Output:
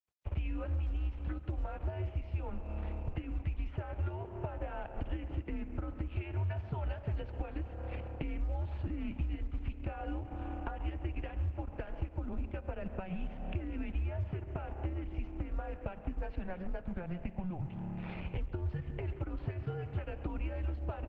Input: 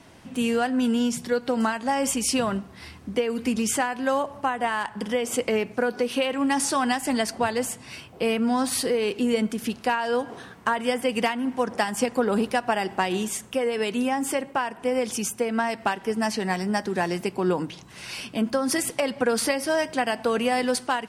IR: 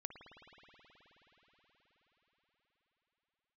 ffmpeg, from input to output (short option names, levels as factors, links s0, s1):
-filter_complex "[0:a]bandreject=f=1300:w=5.5,aeval=exprs='sgn(val(0))*max(abs(val(0))-0.00944,0)':c=same,asplit=2[s0][s1];[1:a]atrim=start_sample=2205,asetrate=83790,aresample=44100,lowpass=5600[s2];[s1][s2]afir=irnorm=-1:irlink=0,volume=1[s3];[s0][s3]amix=inputs=2:normalize=0,acompressor=threshold=0.02:ratio=16,equalizer=f=250:t=o:w=1:g=11,equalizer=f=500:t=o:w=1:g=-6,equalizer=f=2000:t=o:w=1:g=-12,acrossover=split=340|1800[s4][s5][s6];[s4]acompressor=threshold=0.00631:ratio=4[s7];[s5]acompressor=threshold=0.00562:ratio=4[s8];[s6]acompressor=threshold=0.00631:ratio=4[s9];[s7][s8][s9]amix=inputs=3:normalize=0,highpass=f=170:t=q:w=0.5412,highpass=f=170:t=q:w=1.307,lowpass=f=2700:t=q:w=0.5176,lowpass=f=2700:t=q:w=0.7071,lowpass=f=2700:t=q:w=1.932,afreqshift=-180,asplit=2[s10][s11];[s11]adelay=139.9,volume=0.126,highshelf=f=4000:g=-3.15[s12];[s10][s12]amix=inputs=2:normalize=0,volume=1.88" -ar 48000 -c:a libopus -b:a 12k